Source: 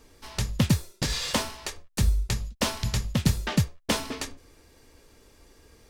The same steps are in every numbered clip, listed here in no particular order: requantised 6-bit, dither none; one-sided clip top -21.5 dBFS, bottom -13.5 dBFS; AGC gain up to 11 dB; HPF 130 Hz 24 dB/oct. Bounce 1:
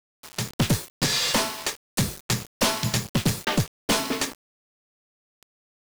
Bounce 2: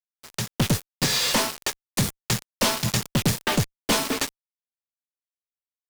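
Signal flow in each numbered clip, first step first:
AGC > HPF > one-sided clip > requantised; HPF > requantised > AGC > one-sided clip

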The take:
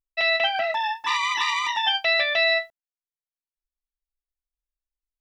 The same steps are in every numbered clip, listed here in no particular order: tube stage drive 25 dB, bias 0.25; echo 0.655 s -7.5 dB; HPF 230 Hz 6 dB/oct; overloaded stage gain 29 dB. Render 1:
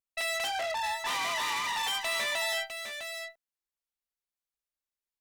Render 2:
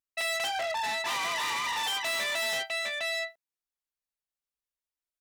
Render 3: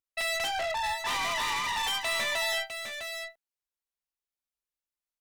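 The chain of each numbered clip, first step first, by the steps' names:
overloaded stage > HPF > tube stage > echo; echo > tube stage > overloaded stage > HPF; HPF > tube stage > overloaded stage > echo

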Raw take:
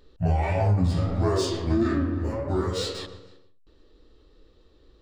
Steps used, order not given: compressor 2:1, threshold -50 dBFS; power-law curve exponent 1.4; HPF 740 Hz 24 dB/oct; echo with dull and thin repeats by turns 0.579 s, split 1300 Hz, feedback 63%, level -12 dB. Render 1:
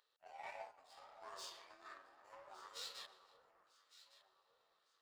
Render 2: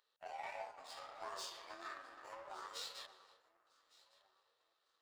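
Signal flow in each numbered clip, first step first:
compressor > HPF > power-law curve > echo with dull and thin repeats by turns; HPF > compressor > echo with dull and thin repeats by turns > power-law curve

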